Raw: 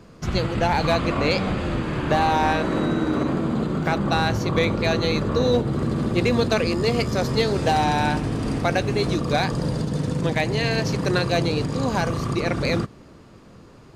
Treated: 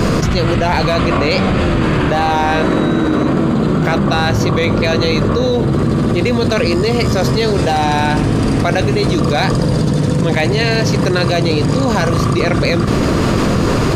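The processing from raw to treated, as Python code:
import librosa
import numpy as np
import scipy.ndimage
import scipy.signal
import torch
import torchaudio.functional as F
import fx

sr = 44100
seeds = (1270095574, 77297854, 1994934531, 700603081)

y = fx.notch(x, sr, hz=840.0, q=14.0)
y = fx.env_flatten(y, sr, amount_pct=100)
y = y * 10.0 ** (3.0 / 20.0)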